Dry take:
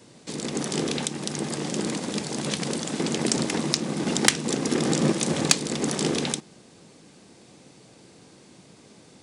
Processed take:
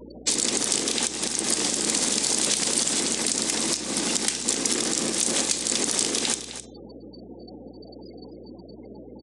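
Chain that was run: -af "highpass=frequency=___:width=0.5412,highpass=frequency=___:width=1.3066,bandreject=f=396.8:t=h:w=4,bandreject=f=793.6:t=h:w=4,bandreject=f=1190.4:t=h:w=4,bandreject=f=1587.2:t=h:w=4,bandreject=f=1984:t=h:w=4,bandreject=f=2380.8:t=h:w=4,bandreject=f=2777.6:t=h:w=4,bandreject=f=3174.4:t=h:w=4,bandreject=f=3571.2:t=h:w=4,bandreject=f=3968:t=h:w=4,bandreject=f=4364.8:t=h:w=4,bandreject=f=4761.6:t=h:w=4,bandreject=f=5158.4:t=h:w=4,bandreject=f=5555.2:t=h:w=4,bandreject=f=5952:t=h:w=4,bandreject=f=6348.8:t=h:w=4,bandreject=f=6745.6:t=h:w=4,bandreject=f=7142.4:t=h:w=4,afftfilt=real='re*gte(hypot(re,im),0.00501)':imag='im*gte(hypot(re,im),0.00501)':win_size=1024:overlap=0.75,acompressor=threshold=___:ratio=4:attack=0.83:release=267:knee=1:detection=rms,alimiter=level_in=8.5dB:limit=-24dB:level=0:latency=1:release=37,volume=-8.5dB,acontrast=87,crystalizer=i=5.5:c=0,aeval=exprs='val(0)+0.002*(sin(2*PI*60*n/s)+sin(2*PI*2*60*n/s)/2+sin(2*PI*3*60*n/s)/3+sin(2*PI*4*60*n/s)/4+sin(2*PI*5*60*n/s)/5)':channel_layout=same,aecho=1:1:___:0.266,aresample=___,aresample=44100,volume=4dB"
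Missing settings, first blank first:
210, 210, -35dB, 259, 22050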